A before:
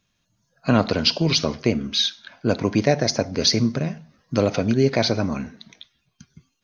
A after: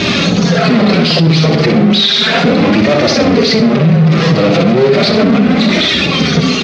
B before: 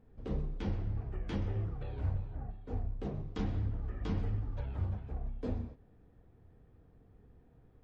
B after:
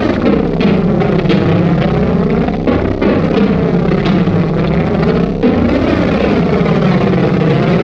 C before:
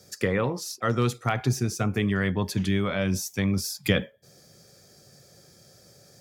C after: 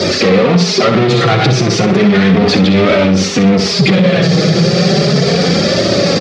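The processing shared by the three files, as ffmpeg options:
-af "aeval=exprs='val(0)+0.5*0.0668*sgn(val(0))':c=same,afftfilt=real='re*gte(hypot(re,im),0.0158)':imag='im*gte(hypot(re,im),0.0158)':win_size=1024:overlap=0.75,adynamicequalizer=threshold=0.0224:dfrequency=170:dqfactor=1.2:tfrequency=170:tqfactor=1.2:attack=5:release=100:ratio=0.375:range=2:mode=cutabove:tftype=bell,acontrast=71,acrusher=bits=3:mode=log:mix=0:aa=0.000001,aeval=exprs='(tanh(12.6*val(0)+0.4)-tanh(0.4))/12.6':c=same,flanger=delay=3.1:depth=3.3:regen=-11:speed=0.34:shape=triangular,aeval=exprs='0.112*(cos(1*acos(clip(val(0)/0.112,-1,1)))-cos(1*PI/2))+0.00631*(cos(3*acos(clip(val(0)/0.112,-1,1)))-cos(3*PI/2))':c=same,aeval=exprs='val(0)+0.00316*sin(2*PI*400*n/s)':c=same,highpass=130,equalizer=f=170:t=q:w=4:g=9,equalizer=f=430:t=q:w=4:g=4,equalizer=f=940:t=q:w=4:g=-9,equalizer=f=1600:t=q:w=4:g=-6,equalizer=f=3000:t=q:w=4:g=-4,lowpass=f=4300:w=0.5412,lowpass=f=4300:w=1.3066,aecho=1:1:63|126|189|252:0.447|0.138|0.0429|0.0133,alimiter=level_in=12.6:limit=0.891:release=50:level=0:latency=1,volume=0.891"

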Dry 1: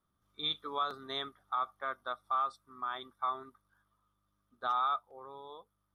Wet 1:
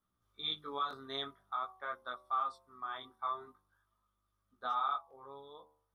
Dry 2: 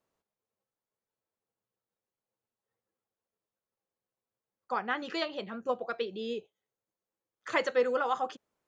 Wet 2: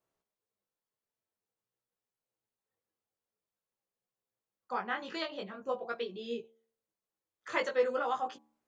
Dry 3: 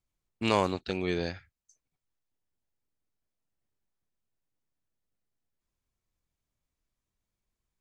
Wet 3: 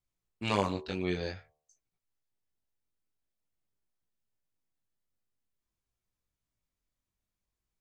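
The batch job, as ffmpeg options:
-af "flanger=delay=16.5:depth=5.7:speed=0.49,bandreject=f=75.51:t=h:w=4,bandreject=f=151.02:t=h:w=4,bandreject=f=226.53:t=h:w=4,bandreject=f=302.04:t=h:w=4,bandreject=f=377.55:t=h:w=4,bandreject=f=453.06:t=h:w=4,bandreject=f=528.57:t=h:w=4,bandreject=f=604.08:t=h:w=4,bandreject=f=679.59:t=h:w=4,bandreject=f=755.1:t=h:w=4,bandreject=f=830.61:t=h:w=4,bandreject=f=906.12:t=h:w=4,bandreject=f=981.63:t=h:w=4,bandreject=f=1057.14:t=h:w=4,bandreject=f=1132.65:t=h:w=4"

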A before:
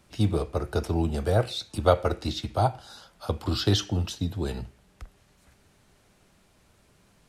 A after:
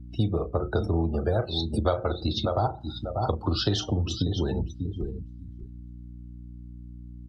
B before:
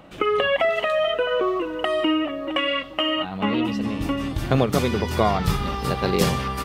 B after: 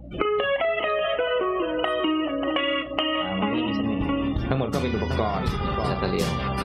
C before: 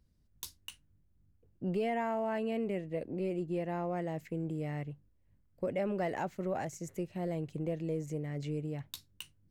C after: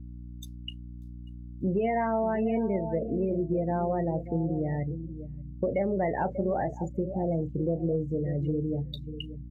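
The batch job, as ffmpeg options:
-filter_complex "[0:a]asplit=2[s0][s1];[s1]adelay=36,volume=0.316[s2];[s0][s2]amix=inputs=2:normalize=0,aecho=1:1:590|1180|1770:0.282|0.0676|0.0162,afftdn=nr=33:nf=-37,aeval=exprs='val(0)+0.00355*(sin(2*PI*60*n/s)+sin(2*PI*2*60*n/s)/2+sin(2*PI*3*60*n/s)/3+sin(2*PI*4*60*n/s)/4+sin(2*PI*5*60*n/s)/5)':c=same,acompressor=threshold=0.0251:ratio=4,volume=2.66"

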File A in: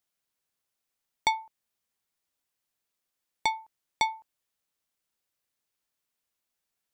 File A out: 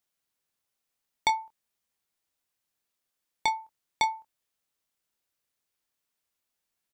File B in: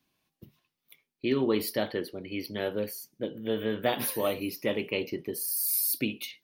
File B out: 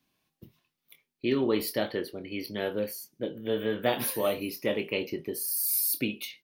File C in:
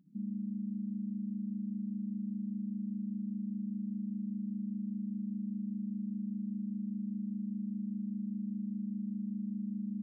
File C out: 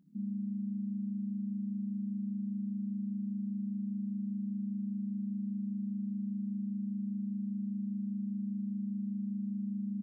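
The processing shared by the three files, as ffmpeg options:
-filter_complex "[0:a]asplit=2[s0][s1];[s1]adelay=25,volume=0.316[s2];[s0][s2]amix=inputs=2:normalize=0"

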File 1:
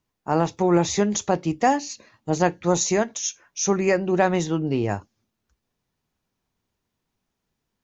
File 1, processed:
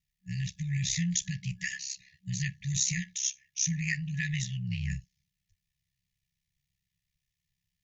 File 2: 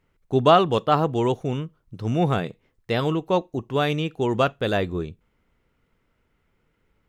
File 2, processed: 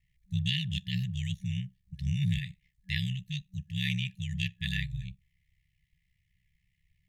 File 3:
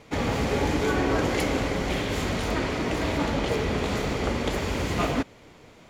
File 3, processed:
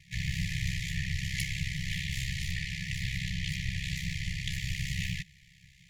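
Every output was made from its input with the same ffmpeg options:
-af "aeval=exprs='val(0)*sin(2*PI*33*n/s)':c=same,afftfilt=real='re*(1-between(b*sr/4096,190,1700))':imag='im*(1-between(b*sr/4096,190,1700))':win_size=4096:overlap=0.75"

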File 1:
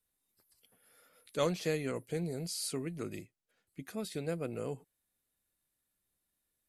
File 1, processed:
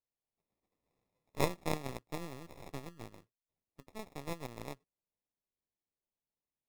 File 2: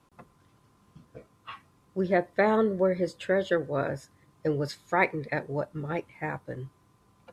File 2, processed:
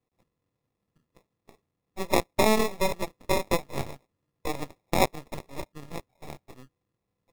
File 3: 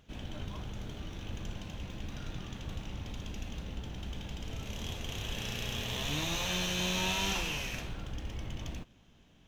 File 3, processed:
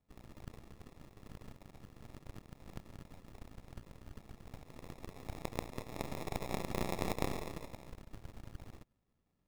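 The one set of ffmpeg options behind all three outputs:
-af "acrusher=samples=29:mix=1:aa=0.000001,aeval=exprs='0.299*(cos(1*acos(clip(val(0)/0.299,-1,1)))-cos(1*PI/2))+0.0596*(cos(6*acos(clip(val(0)/0.299,-1,1)))-cos(6*PI/2))+0.0376*(cos(7*acos(clip(val(0)/0.299,-1,1)))-cos(7*PI/2))':c=same"

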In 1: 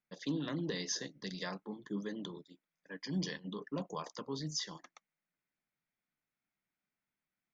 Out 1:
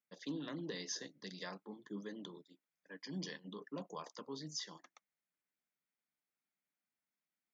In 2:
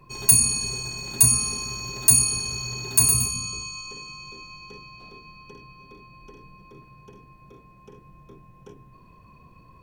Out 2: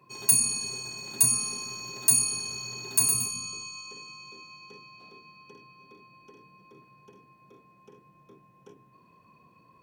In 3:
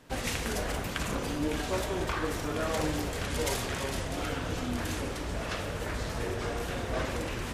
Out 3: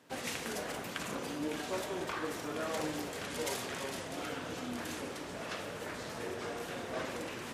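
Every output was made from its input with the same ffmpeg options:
-af "highpass=180,volume=0.562"

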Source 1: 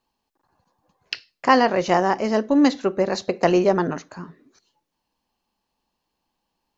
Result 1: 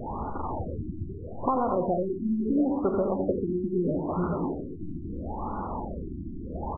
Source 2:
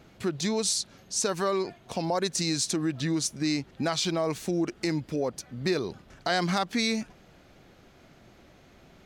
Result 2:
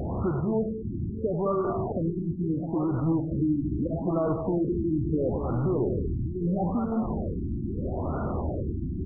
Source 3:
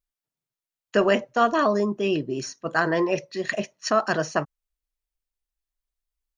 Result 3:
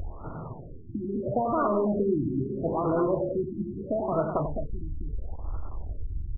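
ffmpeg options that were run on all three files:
-af "aeval=exprs='val(0)+0.5*0.075*sgn(val(0))':c=same,equalizer=f=80:w=2.5:g=10,acompressor=threshold=0.1:ratio=6,aecho=1:1:91|210|657:0.398|0.398|0.282,afftfilt=real='re*lt(b*sr/1024,350*pow(1500/350,0.5+0.5*sin(2*PI*0.76*pts/sr)))':imag='im*lt(b*sr/1024,350*pow(1500/350,0.5+0.5*sin(2*PI*0.76*pts/sr)))':win_size=1024:overlap=0.75,volume=0.75"

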